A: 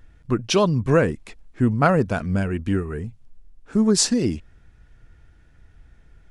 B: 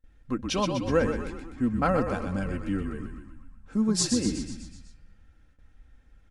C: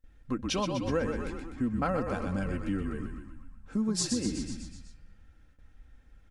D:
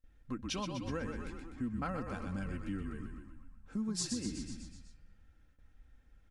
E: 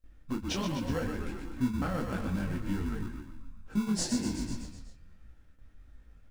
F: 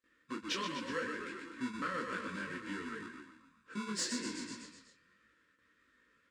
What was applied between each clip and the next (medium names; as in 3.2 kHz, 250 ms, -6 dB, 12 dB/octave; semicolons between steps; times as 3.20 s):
on a send: frequency-shifting echo 124 ms, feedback 57%, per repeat -43 Hz, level -6 dB; on the sum: gate with hold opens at -43 dBFS; comb 3.8 ms, depth 54%; trim -8.5 dB
compression 2.5:1, threshold -28 dBFS, peak gain reduction 7 dB
dynamic bell 540 Hz, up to -6 dB, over -46 dBFS, Q 1.1; trim -6 dB
in parallel at -5.5 dB: sample-and-hold 36×; on the sum: detune thickener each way 46 cents; trim +7 dB
cabinet simulation 420–8300 Hz, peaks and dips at 630 Hz -9 dB, 1 kHz +4 dB, 1.8 kHz +6 dB, 5.9 kHz -5 dB; in parallel at -8 dB: saturation -35 dBFS, distortion -12 dB; on the sum: Butterworth band-stop 780 Hz, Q 1.9; trim -2 dB